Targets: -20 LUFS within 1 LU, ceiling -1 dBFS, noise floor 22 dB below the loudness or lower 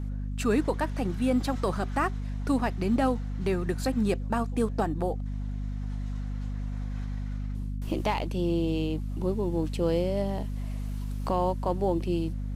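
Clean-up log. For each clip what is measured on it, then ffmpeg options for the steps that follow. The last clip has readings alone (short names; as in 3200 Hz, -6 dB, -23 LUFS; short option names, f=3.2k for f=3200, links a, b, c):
hum 50 Hz; harmonics up to 250 Hz; hum level -30 dBFS; loudness -29.5 LUFS; peak -14.5 dBFS; loudness target -20.0 LUFS
-> -af "bandreject=f=50:t=h:w=4,bandreject=f=100:t=h:w=4,bandreject=f=150:t=h:w=4,bandreject=f=200:t=h:w=4,bandreject=f=250:t=h:w=4"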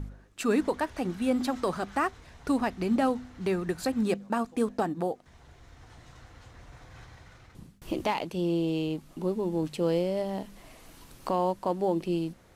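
hum none; loudness -30.0 LUFS; peak -15.5 dBFS; loudness target -20.0 LUFS
-> -af "volume=10dB"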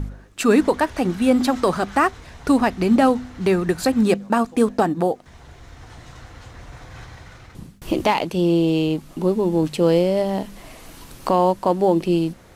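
loudness -20.0 LUFS; peak -5.5 dBFS; noise floor -46 dBFS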